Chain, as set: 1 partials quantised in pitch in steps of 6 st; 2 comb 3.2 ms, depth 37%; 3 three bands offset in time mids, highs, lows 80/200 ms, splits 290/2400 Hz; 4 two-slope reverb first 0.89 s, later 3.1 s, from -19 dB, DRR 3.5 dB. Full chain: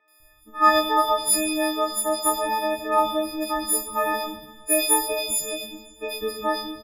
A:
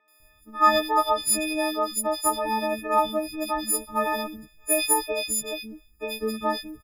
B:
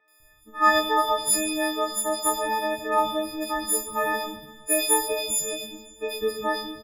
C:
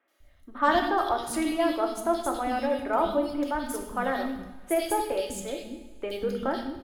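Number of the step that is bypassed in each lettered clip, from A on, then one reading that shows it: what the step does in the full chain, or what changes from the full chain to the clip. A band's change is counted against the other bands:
4, loudness change -2.0 LU; 2, momentary loudness spread change -1 LU; 1, 8 kHz band -12.0 dB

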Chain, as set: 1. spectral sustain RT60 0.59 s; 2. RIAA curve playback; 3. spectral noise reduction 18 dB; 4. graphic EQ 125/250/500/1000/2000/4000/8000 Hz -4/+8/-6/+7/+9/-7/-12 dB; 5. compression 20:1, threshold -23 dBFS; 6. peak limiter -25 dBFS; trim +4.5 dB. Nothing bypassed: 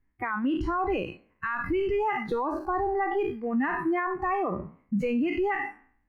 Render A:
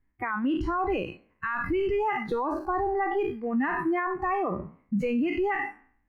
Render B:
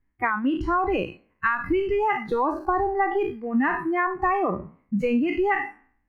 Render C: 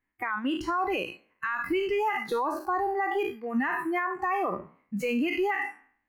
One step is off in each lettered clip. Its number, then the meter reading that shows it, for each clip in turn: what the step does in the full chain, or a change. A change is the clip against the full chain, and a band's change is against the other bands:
5, mean gain reduction 2.0 dB; 6, mean gain reduction 2.5 dB; 2, 4 kHz band +7.0 dB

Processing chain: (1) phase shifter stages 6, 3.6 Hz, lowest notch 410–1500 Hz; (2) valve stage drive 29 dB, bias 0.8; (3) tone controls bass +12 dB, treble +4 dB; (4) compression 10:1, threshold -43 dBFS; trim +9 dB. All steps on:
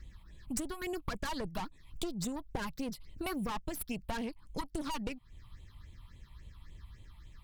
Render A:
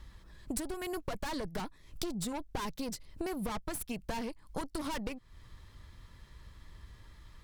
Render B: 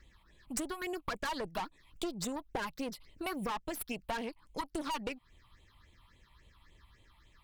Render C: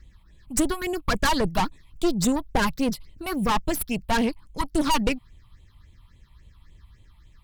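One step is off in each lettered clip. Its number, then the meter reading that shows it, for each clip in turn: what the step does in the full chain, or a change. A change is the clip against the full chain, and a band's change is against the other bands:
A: 1, 500 Hz band +1.5 dB; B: 3, 125 Hz band -7.5 dB; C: 4, mean gain reduction 8.0 dB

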